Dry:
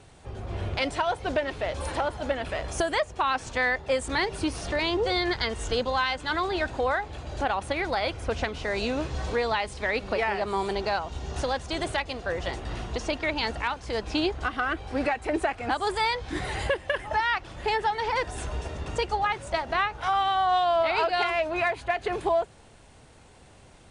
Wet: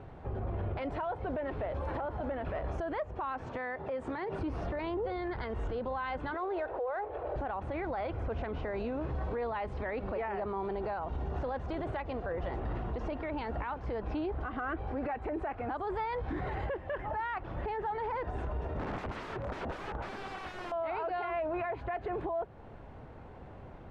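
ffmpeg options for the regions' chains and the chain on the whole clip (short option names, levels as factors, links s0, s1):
-filter_complex "[0:a]asettb=1/sr,asplit=3[s0][s1][s2];[s0]atrim=end=3.464[s3];[s1]atrim=start=3.46:end=4.39,asetpts=PTS-STARTPTS,afade=t=in:d=0.004:c=qsin,afade=t=out:st=0.926:d=0.004:c=qsin,highpass=130,acompressor=threshold=0.0224:ratio=12:attack=3.2:release=140:knee=1:detection=peak[s4];[s2]atrim=start=4.386[s5];[s3][s4]acrossfade=d=0.004:c1=hsin:c2=qsin[s6];[s6][s5]acrossfade=d=0.004:c1=qsin:c2=hsin,asettb=1/sr,asplit=3[s7][s8][s9];[s7]atrim=end=6.344[s10];[s8]atrim=start=6.34:end=7.36,asetpts=PTS-STARTPTS,afade=t=in:d=0.004:c=qsin,afade=t=out:st=1.016:d=0.004:c=qsin,lowshelf=f=310:t=q:w=3:g=-13,adynamicsmooth=sensitivity=6.5:basefreq=2300[s11];[s9]atrim=start=7.356[s12];[s10][s11]acrossfade=d=0.004:c1=hsin:c2=qsin[s13];[s13][s12]acrossfade=d=0.004:c1=qsin:c2=hsin,asettb=1/sr,asplit=3[s14][s15][s16];[s14]atrim=end=18.794[s17];[s15]atrim=start=18.79:end=20.72,asetpts=PTS-STARTPTS,afade=t=in:d=0.004:c=qsin,afade=t=out:st=1.926:d=0.004:c=qsin,lowpass=f=2300:p=1,aeval=exprs='(mod(42.2*val(0)+1,2)-1)/42.2':c=same[s18];[s16]atrim=start=20.716[s19];[s17][s18]acrossfade=d=0.004:c1=hsin:c2=qsin[s20];[s20][s19]acrossfade=d=0.004:c1=qsin:c2=hsin,lowpass=1300,acompressor=threshold=0.01:ratio=1.5,alimiter=level_in=2.82:limit=0.0631:level=0:latency=1:release=40,volume=0.355,volume=1.78"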